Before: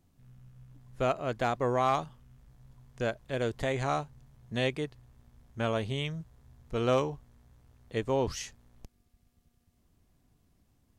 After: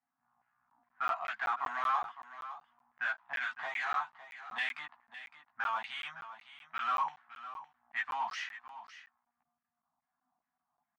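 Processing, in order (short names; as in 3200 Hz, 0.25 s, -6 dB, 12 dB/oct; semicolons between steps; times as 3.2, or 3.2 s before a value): elliptic band-stop 260–720 Hz; low-pass opened by the level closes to 470 Hz, open at -29.5 dBFS; low shelf 370 Hz -12 dB; in parallel at +2 dB: compressor, threshold -47 dBFS, peak gain reduction 19 dB; on the sum: chorus voices 6, 0.19 Hz, delay 16 ms, depth 4.2 ms; overdrive pedal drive 21 dB, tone 7000 Hz, clips at -21 dBFS; LFO band-pass saw down 2.4 Hz 880–2000 Hz; on a send: echo 0.559 s -13.5 dB; on the sum: crackling interface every 0.19 s, samples 512, zero, from 0.7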